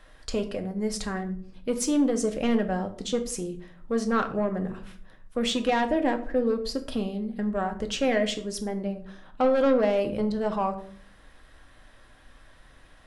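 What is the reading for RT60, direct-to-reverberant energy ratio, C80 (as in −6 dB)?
0.55 s, 5.0 dB, 16.5 dB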